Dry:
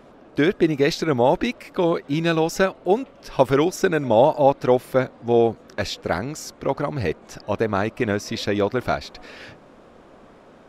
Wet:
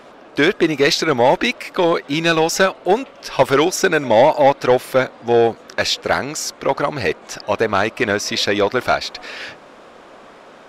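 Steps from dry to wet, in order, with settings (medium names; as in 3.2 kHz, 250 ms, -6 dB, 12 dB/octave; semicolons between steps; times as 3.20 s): overdrive pedal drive 15 dB, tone 3.8 kHz, clips at -2 dBFS; treble shelf 3.4 kHz +7.5 dB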